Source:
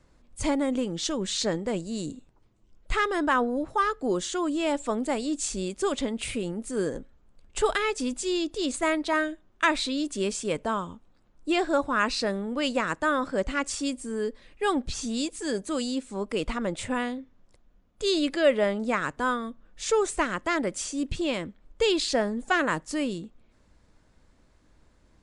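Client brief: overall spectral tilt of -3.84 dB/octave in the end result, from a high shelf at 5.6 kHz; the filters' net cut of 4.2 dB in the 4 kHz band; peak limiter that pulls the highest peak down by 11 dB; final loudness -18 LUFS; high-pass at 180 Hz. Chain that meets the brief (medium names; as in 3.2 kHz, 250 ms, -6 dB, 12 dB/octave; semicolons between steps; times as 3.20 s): high-pass 180 Hz; peaking EQ 4 kHz -3 dB; treble shelf 5.6 kHz -6.5 dB; trim +13.5 dB; peak limiter -7 dBFS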